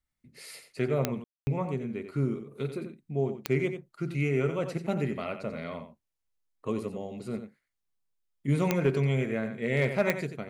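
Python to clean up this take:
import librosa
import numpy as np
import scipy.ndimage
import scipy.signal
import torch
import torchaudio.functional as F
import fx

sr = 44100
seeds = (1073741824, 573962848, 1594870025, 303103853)

y = fx.fix_declip(x, sr, threshold_db=-15.0)
y = fx.fix_declick_ar(y, sr, threshold=10.0)
y = fx.fix_ambience(y, sr, seeds[0], print_start_s=5.97, print_end_s=6.47, start_s=1.24, end_s=1.47)
y = fx.fix_echo_inverse(y, sr, delay_ms=90, level_db=-9.5)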